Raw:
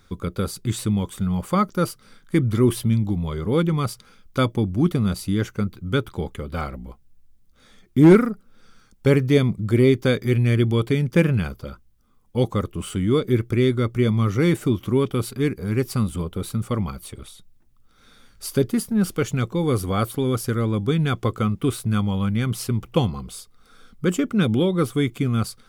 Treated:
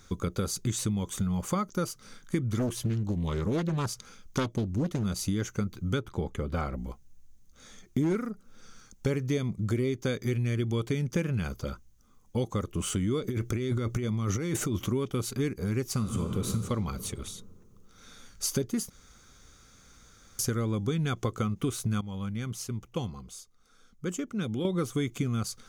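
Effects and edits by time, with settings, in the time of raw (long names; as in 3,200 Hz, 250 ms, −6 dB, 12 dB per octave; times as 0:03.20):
0:02.59–0:05.04: highs frequency-modulated by the lows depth 0.72 ms
0:05.99–0:06.78: high-shelf EQ 2,600 Hz −8.5 dB
0:13.23–0:14.86: compressor whose output falls as the input rises −25 dBFS
0:15.92–0:16.54: thrown reverb, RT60 2.4 s, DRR 5 dB
0:18.90–0:20.39: fill with room tone
0:22.01–0:24.65: clip gain −11.5 dB
whole clip: parametric band 6,400 Hz +13 dB 0.37 octaves; downward compressor 6 to 1, threshold −26 dBFS; every ending faded ahead of time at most 570 dB per second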